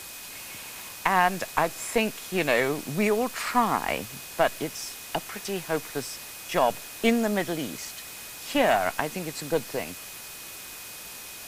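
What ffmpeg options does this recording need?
ffmpeg -i in.wav -af "adeclick=threshold=4,bandreject=frequency=2500:width=30,afwtdn=0.01" out.wav

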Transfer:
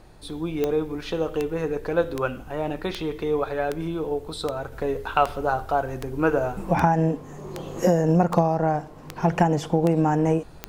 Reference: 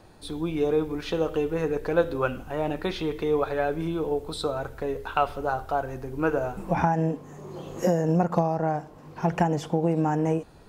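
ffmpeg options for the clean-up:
ffmpeg -i in.wav -af "adeclick=threshold=4,agate=range=-21dB:threshold=-31dB,asetnsamples=nb_out_samples=441:pad=0,asendcmd='4.72 volume volume -3.5dB',volume=0dB" out.wav

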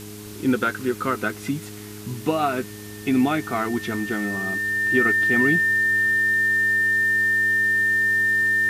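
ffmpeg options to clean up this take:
ffmpeg -i in.wav -af "bandreject=frequency=104.3:width_type=h:width=4,bandreject=frequency=208.6:width_type=h:width=4,bandreject=frequency=312.9:width_type=h:width=4,bandreject=frequency=417.2:width_type=h:width=4,bandreject=frequency=1800:width=30,afwtdn=0.0079" out.wav

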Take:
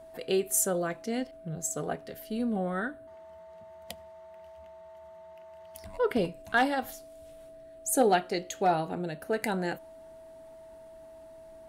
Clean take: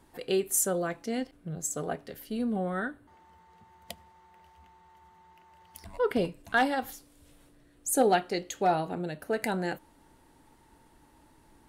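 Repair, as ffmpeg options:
ffmpeg -i in.wav -af "bandreject=frequency=650:width=30" out.wav

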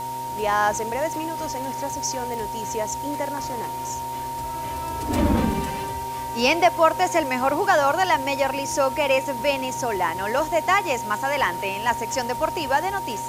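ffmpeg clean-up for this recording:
ffmpeg -i in.wav -af "adeclick=threshold=4,bandreject=frequency=126.6:width_type=h:width=4,bandreject=frequency=253.2:width_type=h:width=4,bandreject=frequency=379.8:width_type=h:width=4,bandreject=frequency=506.4:width_type=h:width=4,bandreject=frequency=633:width_type=h:width=4,bandreject=frequency=759.6:width_type=h:width=4,bandreject=frequency=930:width=30,afwtdn=0.0079" out.wav

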